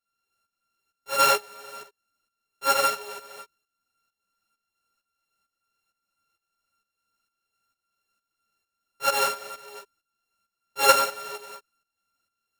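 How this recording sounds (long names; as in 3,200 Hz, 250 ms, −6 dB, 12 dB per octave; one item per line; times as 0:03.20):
a buzz of ramps at a fixed pitch in blocks of 32 samples
tremolo saw up 2.2 Hz, depth 75%
a shimmering, thickened sound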